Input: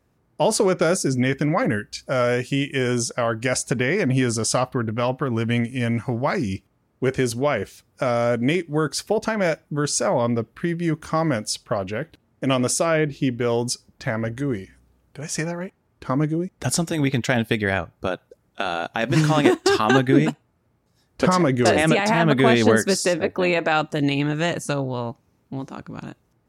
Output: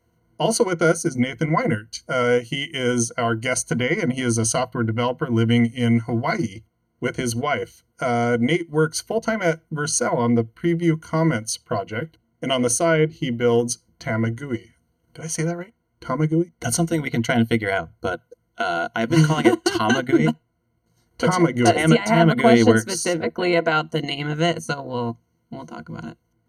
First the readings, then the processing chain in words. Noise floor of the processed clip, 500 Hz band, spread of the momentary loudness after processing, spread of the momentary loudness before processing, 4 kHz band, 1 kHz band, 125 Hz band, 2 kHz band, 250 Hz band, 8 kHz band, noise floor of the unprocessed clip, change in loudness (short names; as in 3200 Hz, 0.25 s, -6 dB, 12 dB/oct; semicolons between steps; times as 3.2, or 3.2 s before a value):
-69 dBFS, 0.0 dB, 12 LU, 11 LU, +0.5 dB, +0.5 dB, +1.0 dB, 0.0 dB, +1.5 dB, +1.5 dB, -66 dBFS, +0.5 dB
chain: ripple EQ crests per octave 1.9, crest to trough 17 dB; transient shaper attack -1 dB, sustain -6 dB; gain -2 dB